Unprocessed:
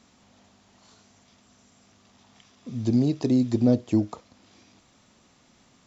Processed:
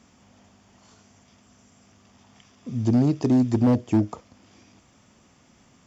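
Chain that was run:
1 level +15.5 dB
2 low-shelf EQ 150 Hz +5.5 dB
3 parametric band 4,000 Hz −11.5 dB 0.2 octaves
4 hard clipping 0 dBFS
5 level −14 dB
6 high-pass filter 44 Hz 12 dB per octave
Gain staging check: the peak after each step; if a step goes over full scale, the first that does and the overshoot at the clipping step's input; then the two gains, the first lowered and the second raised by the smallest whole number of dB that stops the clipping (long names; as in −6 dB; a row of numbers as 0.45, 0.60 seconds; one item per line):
+7.0, +8.0, +8.0, 0.0, −14.0, −10.5 dBFS
step 1, 8.0 dB
step 1 +7.5 dB, step 5 −6 dB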